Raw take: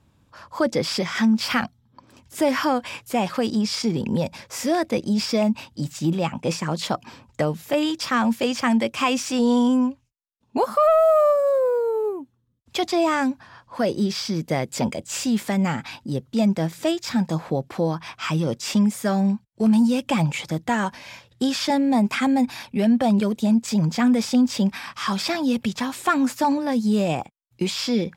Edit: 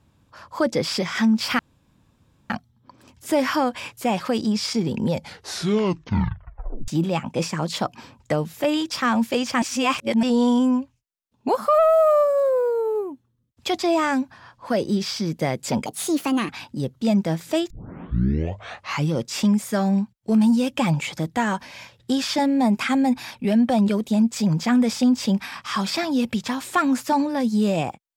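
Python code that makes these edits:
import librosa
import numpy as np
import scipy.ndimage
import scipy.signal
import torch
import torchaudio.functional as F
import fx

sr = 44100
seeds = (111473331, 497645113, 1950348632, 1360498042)

y = fx.edit(x, sr, fx.insert_room_tone(at_s=1.59, length_s=0.91),
    fx.tape_stop(start_s=4.2, length_s=1.77),
    fx.reverse_span(start_s=8.71, length_s=0.61),
    fx.speed_span(start_s=14.95, length_s=0.86, speed=1.36),
    fx.tape_start(start_s=17.02, length_s=1.41), tone=tone)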